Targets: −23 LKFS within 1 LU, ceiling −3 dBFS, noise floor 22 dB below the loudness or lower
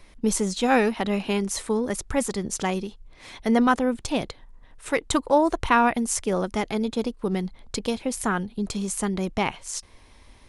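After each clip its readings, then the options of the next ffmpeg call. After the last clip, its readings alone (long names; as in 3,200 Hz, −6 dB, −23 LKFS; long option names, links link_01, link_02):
integrated loudness −25.0 LKFS; sample peak −7.0 dBFS; target loudness −23.0 LKFS
→ -af "volume=2dB"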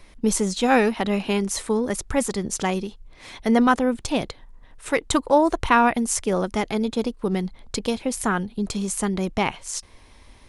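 integrated loudness −23.0 LKFS; sample peak −5.0 dBFS; background noise floor −50 dBFS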